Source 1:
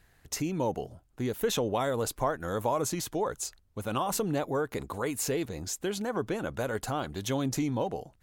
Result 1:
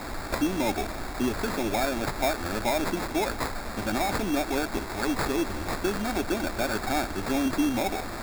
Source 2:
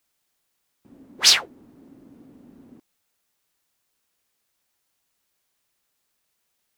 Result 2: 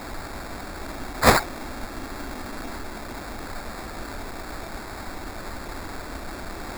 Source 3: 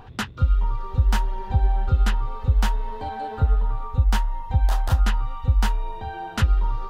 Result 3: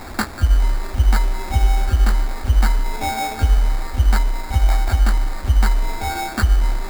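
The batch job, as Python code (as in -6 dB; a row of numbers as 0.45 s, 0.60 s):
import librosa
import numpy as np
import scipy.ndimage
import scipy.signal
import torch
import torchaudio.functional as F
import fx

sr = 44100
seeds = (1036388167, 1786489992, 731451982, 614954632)

p1 = fx.rider(x, sr, range_db=10, speed_s=0.5)
p2 = x + (p1 * librosa.db_to_amplitude(0.5))
p3 = fx.dmg_noise_colour(p2, sr, seeds[0], colour='pink', level_db=-32.0)
p4 = fx.fixed_phaser(p3, sr, hz=720.0, stages=8)
y = fx.sample_hold(p4, sr, seeds[1], rate_hz=3000.0, jitter_pct=0)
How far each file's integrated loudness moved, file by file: +3.5 LU, -13.0 LU, +4.0 LU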